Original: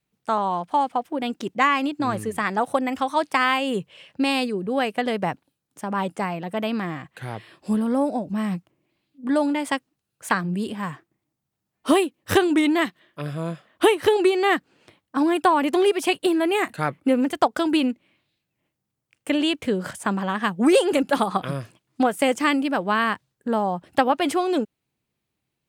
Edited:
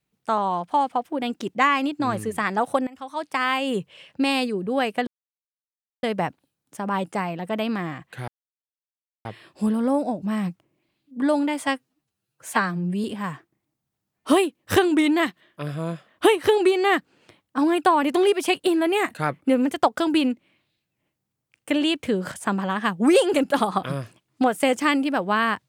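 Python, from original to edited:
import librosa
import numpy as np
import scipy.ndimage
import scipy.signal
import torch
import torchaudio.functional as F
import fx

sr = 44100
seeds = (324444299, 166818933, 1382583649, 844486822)

y = fx.edit(x, sr, fx.fade_in_from(start_s=2.87, length_s=0.84, floor_db=-22.0),
    fx.insert_silence(at_s=5.07, length_s=0.96),
    fx.insert_silence(at_s=7.32, length_s=0.97),
    fx.stretch_span(start_s=9.67, length_s=0.96, factor=1.5), tone=tone)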